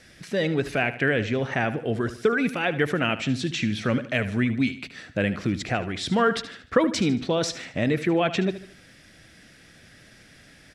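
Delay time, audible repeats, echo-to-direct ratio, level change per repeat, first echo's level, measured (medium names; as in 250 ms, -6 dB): 75 ms, 3, -12.5 dB, -7.5 dB, -13.5 dB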